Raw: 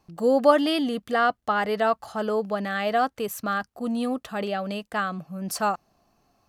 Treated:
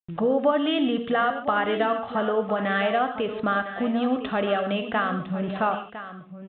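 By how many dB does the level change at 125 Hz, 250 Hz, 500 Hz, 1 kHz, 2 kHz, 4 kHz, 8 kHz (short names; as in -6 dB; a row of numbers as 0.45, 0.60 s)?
+4.0 dB, +2.0 dB, 0.0 dB, 0.0 dB, +1.5 dB, +0.5 dB, under -40 dB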